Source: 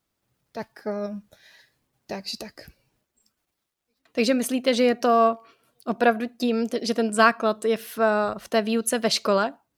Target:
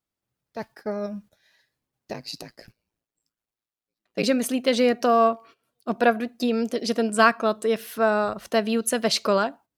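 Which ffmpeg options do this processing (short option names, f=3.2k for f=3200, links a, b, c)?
-filter_complex "[0:a]agate=range=-10dB:threshold=-46dB:ratio=16:detection=peak,asplit=3[a][b][c];[a]afade=t=out:st=2.13:d=0.02[d];[b]aeval=exprs='val(0)*sin(2*PI*56*n/s)':c=same,afade=t=in:st=2.13:d=0.02,afade=t=out:st=4.22:d=0.02[e];[c]afade=t=in:st=4.22:d=0.02[f];[d][e][f]amix=inputs=3:normalize=0"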